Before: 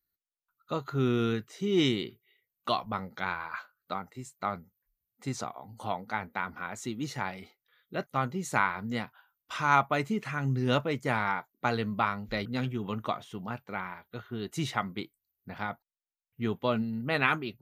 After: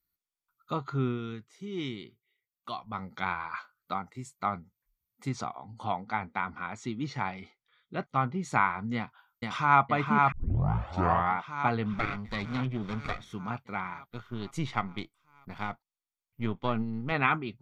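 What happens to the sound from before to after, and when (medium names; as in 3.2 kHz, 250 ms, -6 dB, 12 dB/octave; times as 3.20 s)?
0.79–3.26 s: dip -10 dB, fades 0.42 s equal-power
5.56–8.43 s: low-pass 5.2 kHz
8.95–9.82 s: echo throw 470 ms, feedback 70%, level -2.5 dB
10.32 s: tape start 1.06 s
11.93–13.33 s: comb filter that takes the minimum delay 0.52 ms
14.08–17.12 s: partial rectifier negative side -7 dB
whole clip: low-pass that closes with the level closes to 2.7 kHz, closed at -26.5 dBFS; dynamic bell 740 Hz, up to +5 dB, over -46 dBFS, Q 5.7; comb 0.9 ms, depth 36%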